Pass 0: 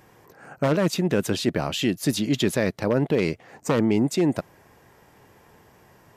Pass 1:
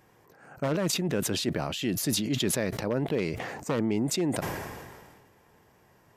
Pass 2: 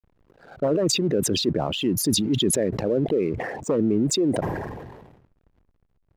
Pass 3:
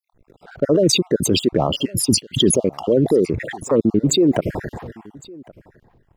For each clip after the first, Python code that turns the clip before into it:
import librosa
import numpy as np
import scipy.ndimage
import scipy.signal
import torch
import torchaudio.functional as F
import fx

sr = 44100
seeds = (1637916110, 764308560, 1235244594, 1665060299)

y1 = fx.sustainer(x, sr, db_per_s=34.0)
y1 = F.gain(torch.from_numpy(y1), -7.0).numpy()
y2 = fx.envelope_sharpen(y1, sr, power=2.0)
y2 = fx.backlash(y2, sr, play_db=-48.5)
y2 = F.gain(torch.from_numpy(y2), 6.0).numpy()
y3 = fx.spec_dropout(y2, sr, seeds[0], share_pct=47)
y3 = y3 + 10.0 ** (-23.5 / 20.0) * np.pad(y3, (int(1109 * sr / 1000.0), 0))[:len(y3)]
y3 = F.gain(torch.from_numpy(y3), 7.0).numpy()